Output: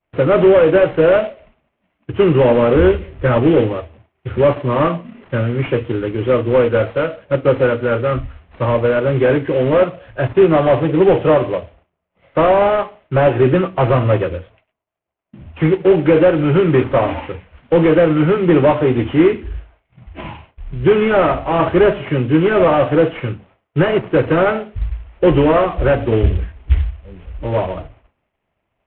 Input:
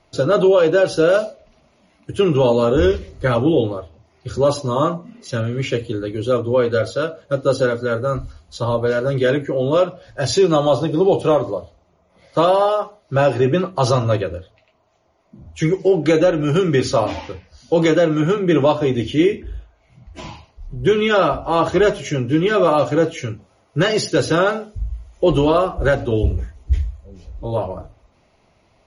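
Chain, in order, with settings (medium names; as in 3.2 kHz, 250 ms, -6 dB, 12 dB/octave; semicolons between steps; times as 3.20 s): CVSD coder 16 kbps; expander -45 dBFS; trim +4.5 dB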